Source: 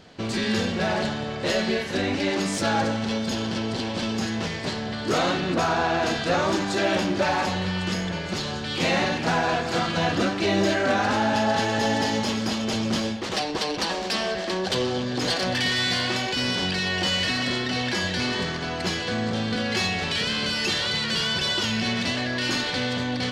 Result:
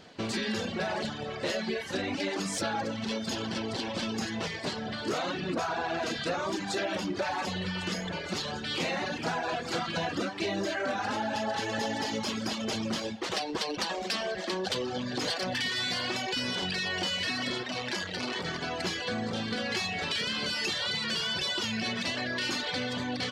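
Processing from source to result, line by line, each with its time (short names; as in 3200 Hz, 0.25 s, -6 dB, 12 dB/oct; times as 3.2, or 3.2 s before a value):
17.63–18.45 core saturation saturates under 1100 Hz
whole clip: reverb removal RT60 0.87 s; low shelf 120 Hz -8 dB; compressor, threshold -27 dBFS; gain -1 dB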